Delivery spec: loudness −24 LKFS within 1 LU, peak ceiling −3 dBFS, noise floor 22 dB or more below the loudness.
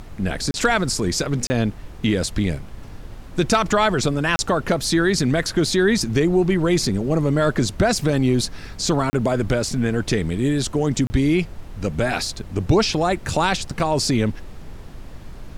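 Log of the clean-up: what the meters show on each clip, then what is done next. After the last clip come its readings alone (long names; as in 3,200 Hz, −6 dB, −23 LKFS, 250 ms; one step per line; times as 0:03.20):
number of dropouts 5; longest dropout 30 ms; background noise floor −38 dBFS; target noise floor −43 dBFS; integrated loudness −21.0 LKFS; sample peak −6.5 dBFS; target loudness −24.0 LKFS
→ repair the gap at 0:00.51/0:01.47/0:04.36/0:09.10/0:11.07, 30 ms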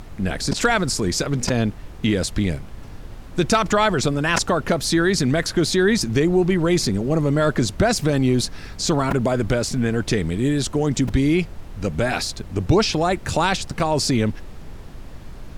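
number of dropouts 0; background noise floor −37 dBFS; target noise floor −43 dBFS
→ noise reduction from a noise print 6 dB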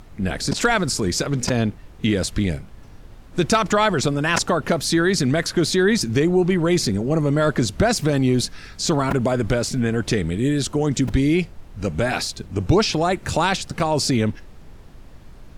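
background noise floor −43 dBFS; integrated loudness −21.0 LKFS; sample peak −6.5 dBFS; target loudness −24.0 LKFS
→ level −3 dB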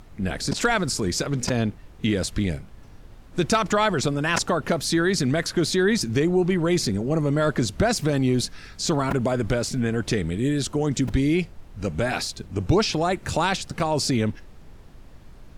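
integrated loudness −24.0 LKFS; sample peak −9.5 dBFS; background noise floor −46 dBFS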